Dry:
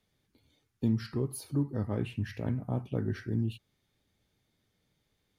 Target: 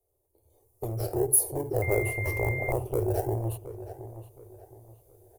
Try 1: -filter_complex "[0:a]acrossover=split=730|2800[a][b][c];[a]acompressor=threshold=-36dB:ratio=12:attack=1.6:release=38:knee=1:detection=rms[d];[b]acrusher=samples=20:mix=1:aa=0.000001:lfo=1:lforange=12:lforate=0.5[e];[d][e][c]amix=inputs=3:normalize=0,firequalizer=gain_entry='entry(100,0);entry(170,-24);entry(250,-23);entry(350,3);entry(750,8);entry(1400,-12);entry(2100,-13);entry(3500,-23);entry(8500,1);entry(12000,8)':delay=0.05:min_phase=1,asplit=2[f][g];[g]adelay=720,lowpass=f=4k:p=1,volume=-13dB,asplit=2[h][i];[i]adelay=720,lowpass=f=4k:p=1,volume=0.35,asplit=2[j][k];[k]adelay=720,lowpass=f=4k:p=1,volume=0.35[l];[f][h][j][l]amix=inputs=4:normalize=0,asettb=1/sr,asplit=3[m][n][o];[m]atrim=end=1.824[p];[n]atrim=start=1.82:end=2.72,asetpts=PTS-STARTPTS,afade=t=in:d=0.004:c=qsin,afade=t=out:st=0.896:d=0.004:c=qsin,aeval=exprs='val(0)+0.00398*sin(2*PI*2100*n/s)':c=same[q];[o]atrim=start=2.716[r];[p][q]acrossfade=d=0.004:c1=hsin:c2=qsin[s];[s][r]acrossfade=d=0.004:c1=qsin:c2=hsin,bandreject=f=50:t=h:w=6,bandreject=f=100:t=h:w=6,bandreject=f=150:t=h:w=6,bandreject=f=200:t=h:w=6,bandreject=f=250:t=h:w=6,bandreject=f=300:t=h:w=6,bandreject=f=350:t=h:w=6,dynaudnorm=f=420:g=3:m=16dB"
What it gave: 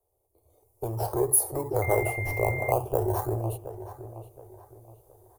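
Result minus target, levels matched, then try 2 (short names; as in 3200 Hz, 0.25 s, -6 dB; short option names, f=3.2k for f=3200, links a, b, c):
decimation with a swept rate: distortion -18 dB
-filter_complex "[0:a]acrossover=split=730|2800[a][b][c];[a]acompressor=threshold=-36dB:ratio=12:attack=1.6:release=38:knee=1:detection=rms[d];[b]acrusher=samples=47:mix=1:aa=0.000001:lfo=1:lforange=28.2:lforate=0.5[e];[d][e][c]amix=inputs=3:normalize=0,firequalizer=gain_entry='entry(100,0);entry(170,-24);entry(250,-23);entry(350,3);entry(750,8);entry(1400,-12);entry(2100,-13);entry(3500,-23);entry(8500,1);entry(12000,8)':delay=0.05:min_phase=1,asplit=2[f][g];[g]adelay=720,lowpass=f=4k:p=1,volume=-13dB,asplit=2[h][i];[i]adelay=720,lowpass=f=4k:p=1,volume=0.35,asplit=2[j][k];[k]adelay=720,lowpass=f=4k:p=1,volume=0.35[l];[f][h][j][l]amix=inputs=4:normalize=0,asettb=1/sr,asplit=3[m][n][o];[m]atrim=end=1.824[p];[n]atrim=start=1.82:end=2.72,asetpts=PTS-STARTPTS,afade=t=in:d=0.004:c=qsin,afade=t=out:st=0.896:d=0.004:c=qsin,aeval=exprs='val(0)+0.00398*sin(2*PI*2100*n/s)':c=same[q];[o]atrim=start=2.716[r];[p][q]acrossfade=d=0.004:c1=hsin:c2=qsin[s];[s][r]acrossfade=d=0.004:c1=qsin:c2=hsin,bandreject=f=50:t=h:w=6,bandreject=f=100:t=h:w=6,bandreject=f=150:t=h:w=6,bandreject=f=200:t=h:w=6,bandreject=f=250:t=h:w=6,bandreject=f=300:t=h:w=6,bandreject=f=350:t=h:w=6,dynaudnorm=f=420:g=3:m=16dB"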